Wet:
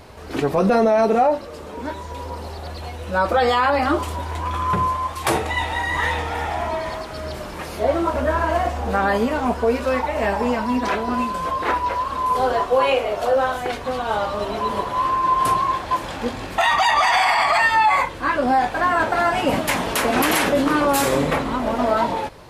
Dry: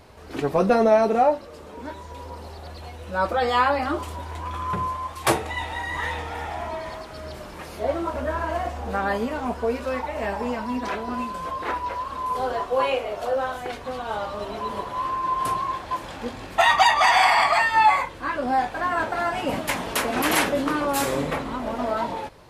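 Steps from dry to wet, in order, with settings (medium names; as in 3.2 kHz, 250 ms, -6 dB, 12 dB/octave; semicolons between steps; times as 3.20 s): peak limiter -15.5 dBFS, peak gain reduction 9.5 dB; trim +6.5 dB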